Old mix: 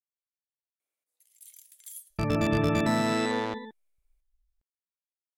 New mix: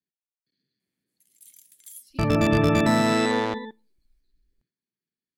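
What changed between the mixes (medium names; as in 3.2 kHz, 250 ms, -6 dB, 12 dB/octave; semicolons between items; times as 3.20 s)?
speech: unmuted; second sound +4.5 dB; reverb: on, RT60 0.40 s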